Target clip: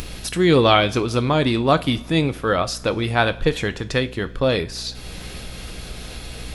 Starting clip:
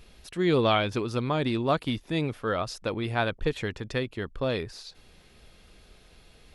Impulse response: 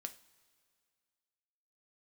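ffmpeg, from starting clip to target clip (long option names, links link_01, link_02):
-filter_complex "[0:a]acompressor=mode=upward:threshold=-31dB:ratio=2.5,aeval=exprs='val(0)+0.00501*(sin(2*PI*60*n/s)+sin(2*PI*2*60*n/s)/2+sin(2*PI*3*60*n/s)/3+sin(2*PI*4*60*n/s)/4+sin(2*PI*5*60*n/s)/5)':channel_layout=same,asplit=2[link_01][link_02];[1:a]atrim=start_sample=2205,highshelf=frequency=4500:gain=7[link_03];[link_02][link_03]afir=irnorm=-1:irlink=0,volume=9.5dB[link_04];[link_01][link_04]amix=inputs=2:normalize=0,volume=-1dB"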